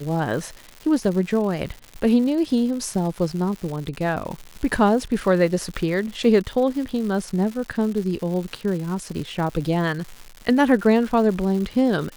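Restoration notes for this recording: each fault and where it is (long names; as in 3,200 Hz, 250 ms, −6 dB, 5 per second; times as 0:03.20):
surface crackle 250 per second −30 dBFS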